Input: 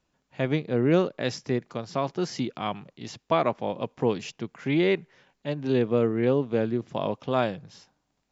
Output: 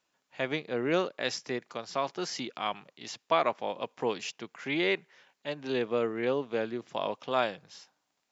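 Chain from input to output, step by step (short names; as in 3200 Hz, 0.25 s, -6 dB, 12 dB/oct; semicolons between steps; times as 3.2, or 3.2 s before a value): HPF 900 Hz 6 dB/oct; gain +1.5 dB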